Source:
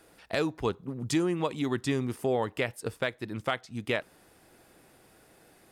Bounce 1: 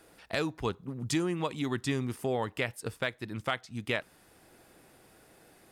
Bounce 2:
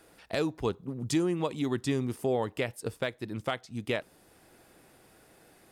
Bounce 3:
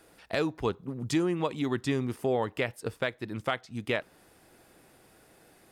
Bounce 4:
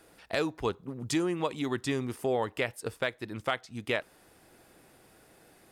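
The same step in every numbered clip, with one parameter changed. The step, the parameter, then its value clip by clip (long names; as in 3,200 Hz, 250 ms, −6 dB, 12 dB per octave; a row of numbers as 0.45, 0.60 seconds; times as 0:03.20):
dynamic equaliser, frequency: 450, 1,600, 9,600, 160 Hertz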